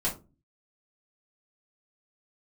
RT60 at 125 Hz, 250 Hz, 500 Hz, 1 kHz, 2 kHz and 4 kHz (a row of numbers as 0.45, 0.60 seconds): 0.60, 0.50, 0.35, 0.25, 0.20, 0.15 seconds